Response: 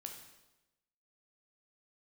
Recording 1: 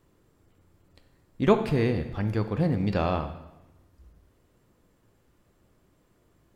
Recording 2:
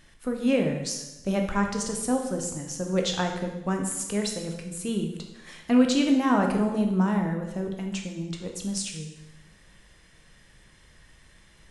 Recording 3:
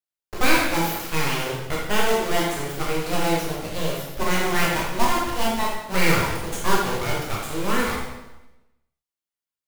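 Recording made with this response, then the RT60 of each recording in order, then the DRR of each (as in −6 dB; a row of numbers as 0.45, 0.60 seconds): 2; 1.0, 1.0, 1.0 seconds; 8.5, 2.5, −4.5 decibels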